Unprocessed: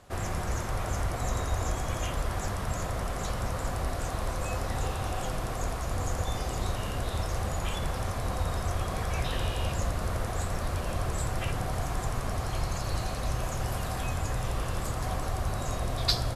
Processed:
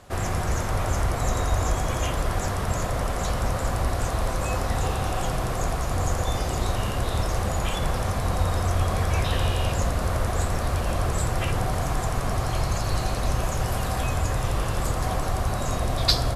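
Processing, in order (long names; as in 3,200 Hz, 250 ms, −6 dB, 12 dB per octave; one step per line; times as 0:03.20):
on a send: low-pass filter 1,200 Hz 24 dB per octave + convolution reverb RT60 4.0 s, pre-delay 45 ms, DRR 11.5 dB
on the sum: level +5.5 dB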